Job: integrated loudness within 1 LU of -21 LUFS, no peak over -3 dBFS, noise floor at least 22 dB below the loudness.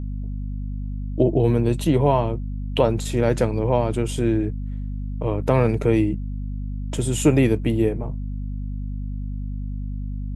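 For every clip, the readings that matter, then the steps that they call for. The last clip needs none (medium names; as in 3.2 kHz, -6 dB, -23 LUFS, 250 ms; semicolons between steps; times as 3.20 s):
hum 50 Hz; highest harmonic 250 Hz; hum level -26 dBFS; loudness -23.0 LUFS; peak level -4.0 dBFS; loudness target -21.0 LUFS
-> hum notches 50/100/150/200/250 Hz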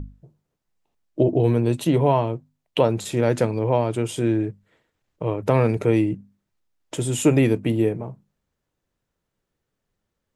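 hum not found; loudness -22.0 LUFS; peak level -5.0 dBFS; loudness target -21.0 LUFS
-> trim +1 dB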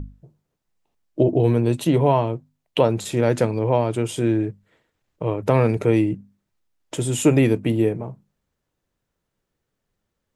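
loudness -21.0 LUFS; peak level -4.0 dBFS; noise floor -79 dBFS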